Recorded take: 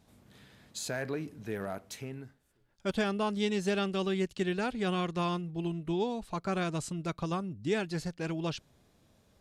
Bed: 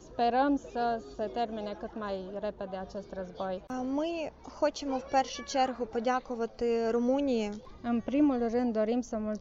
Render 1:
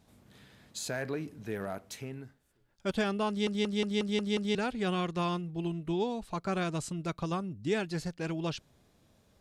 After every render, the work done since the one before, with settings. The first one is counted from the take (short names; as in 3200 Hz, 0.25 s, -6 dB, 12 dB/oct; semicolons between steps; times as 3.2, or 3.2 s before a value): 3.29 stutter in place 0.18 s, 7 plays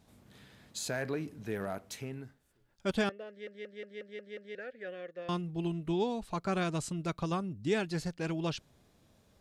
3.09–5.29 double band-pass 970 Hz, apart 1.7 oct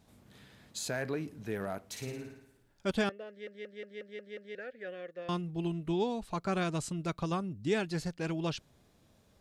1.88–2.91 flutter echo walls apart 9.5 m, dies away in 0.78 s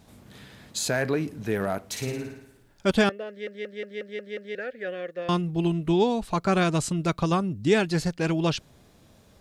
gain +9.5 dB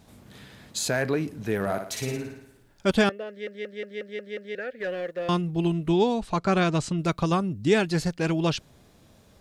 1.6–2.17 flutter echo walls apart 10.3 m, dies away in 0.49 s; 4.8–5.29 sample leveller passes 1; 6.14–6.97 LPF 9800 Hz -> 5500 Hz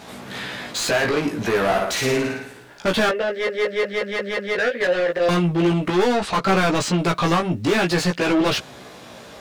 overdrive pedal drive 32 dB, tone 3000 Hz, clips at -8.5 dBFS; chorus 0.47 Hz, delay 15.5 ms, depth 2.1 ms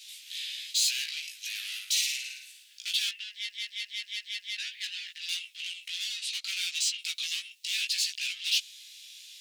steep high-pass 2700 Hz 36 dB/oct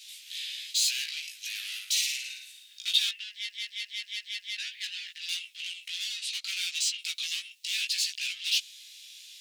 2.28–3.11 small resonant body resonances 1100/3700 Hz, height 13 dB -> 17 dB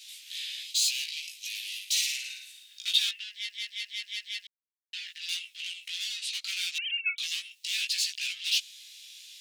0.63–1.91 inverse Chebyshev high-pass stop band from 1100 Hz; 4.47–4.93 mute; 6.78–7.18 sine-wave speech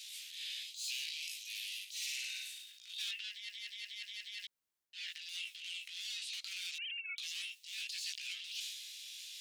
reverse; compressor 4:1, threshold -40 dBFS, peak gain reduction 17.5 dB; reverse; transient shaper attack -12 dB, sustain +6 dB